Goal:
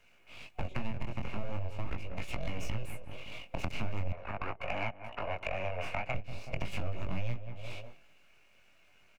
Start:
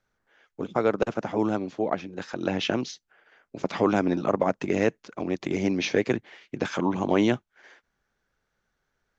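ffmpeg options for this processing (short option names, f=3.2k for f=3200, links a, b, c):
-filter_complex "[0:a]aeval=exprs='abs(val(0))':c=same,asplit=2[a][b];[b]adelay=188,lowpass=f=1.2k:p=1,volume=-17dB,asplit=2[c][d];[d]adelay=188,lowpass=f=1.2k:p=1,volume=0.36,asplit=2[e][f];[f]adelay=188,lowpass=f=1.2k:p=1,volume=0.36[g];[a][c][e][g]amix=inputs=4:normalize=0,flanger=delay=17:depth=6.4:speed=0.41,acrossover=split=280[h][i];[i]acompressor=threshold=-53dB:ratio=2[j];[h][j]amix=inputs=2:normalize=0,asettb=1/sr,asplit=3[k][l][m];[k]atrim=end=4.124[n];[l]atrim=start=4.12:end=6.15,asetpts=PTS-STARTPTS,afade=t=in:d=0.004:c=qsin,afade=t=out:st=2.026:d=0.004:c=qsin,acrossover=split=560 2300:gain=0.126 1 0.112[o][p][q];[o][p][q]amix=inputs=3:normalize=0[r];[m]atrim=start=6.146[s];[n][r]acrossfade=d=0.004:c1=hsin:c2=qsin[t];[t][s]acrossfade=d=0.004:c1=qsin:c2=hsin,acompressor=threshold=-47dB:ratio=2.5,superequalizer=8b=1.78:12b=3.98,asoftclip=type=tanh:threshold=-35dB,volume=13.5dB"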